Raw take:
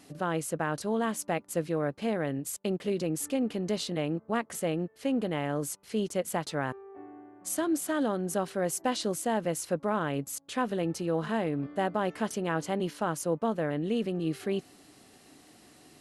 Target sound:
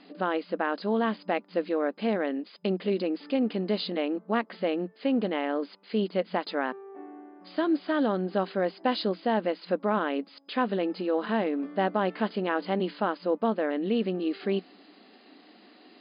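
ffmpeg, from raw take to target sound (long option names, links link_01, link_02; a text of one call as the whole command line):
ffmpeg -i in.wav -af "afftfilt=real='re*between(b*sr/4096,180,5000)':imag='im*between(b*sr/4096,180,5000)':win_size=4096:overlap=0.75,volume=3dB" out.wav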